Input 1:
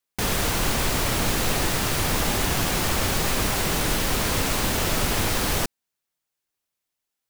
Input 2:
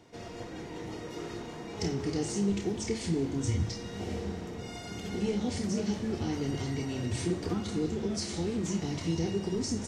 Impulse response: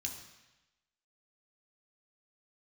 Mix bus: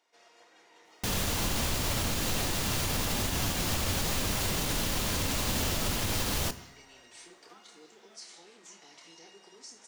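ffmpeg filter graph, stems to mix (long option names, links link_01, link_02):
-filter_complex "[0:a]alimiter=limit=-19.5dB:level=0:latency=1:release=183,adelay=850,volume=-2.5dB,asplit=2[link_01][link_02];[link_02]volume=-7dB[link_03];[1:a]highpass=830,volume=-10dB[link_04];[2:a]atrim=start_sample=2205[link_05];[link_03][link_05]afir=irnorm=-1:irlink=0[link_06];[link_01][link_04][link_06]amix=inputs=3:normalize=0"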